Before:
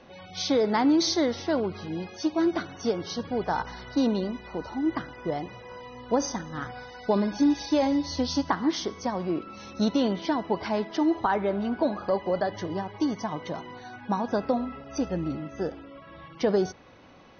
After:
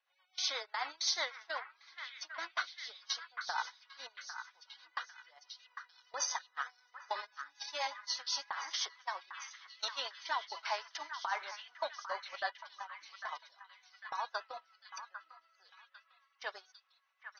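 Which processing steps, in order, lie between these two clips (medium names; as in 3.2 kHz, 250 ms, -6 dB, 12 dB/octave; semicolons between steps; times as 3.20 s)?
inverse Chebyshev high-pass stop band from 160 Hz, stop band 80 dB; gate -37 dBFS, range -25 dB; peak limiter -25 dBFS, peak gain reduction 10 dB; rotary cabinet horn 8 Hz; on a send: repeats whose band climbs or falls 800 ms, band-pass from 1.5 kHz, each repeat 0.7 oct, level -6 dB; on the sum: trim +3.5 dB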